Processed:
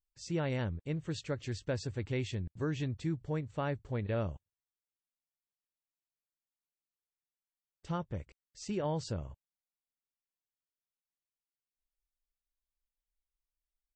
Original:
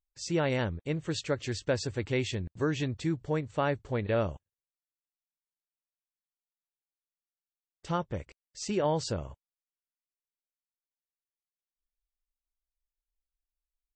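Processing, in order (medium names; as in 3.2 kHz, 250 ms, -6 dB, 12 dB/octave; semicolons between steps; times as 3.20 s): tone controls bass +6 dB, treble -1 dB; trim -7.5 dB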